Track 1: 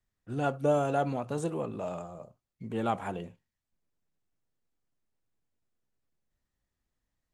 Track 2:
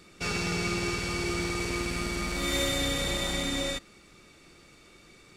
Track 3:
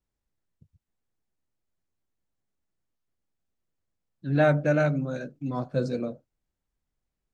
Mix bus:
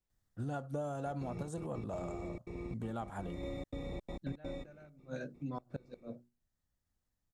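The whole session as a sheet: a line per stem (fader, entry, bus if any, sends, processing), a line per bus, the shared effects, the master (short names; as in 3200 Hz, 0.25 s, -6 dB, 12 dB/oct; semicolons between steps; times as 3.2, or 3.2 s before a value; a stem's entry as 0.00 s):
+3.0 dB, 0.10 s, no send, fifteen-band EQ 100 Hz +4 dB, 400 Hz -6 dB, 1000 Hz -3 dB, 2500 Hz -11 dB
-5.0 dB, 0.85 s, no send, step gate "xxx.xxx.x.x.xx" 167 bpm -60 dB; running mean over 29 samples
-4.0 dB, 0.00 s, no send, notches 60/120/180/240/300/360/420 Hz; flipped gate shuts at -20 dBFS, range -29 dB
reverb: off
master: random-step tremolo 3.5 Hz, depth 55%; compressor 6:1, threshold -36 dBFS, peak gain reduction 12.5 dB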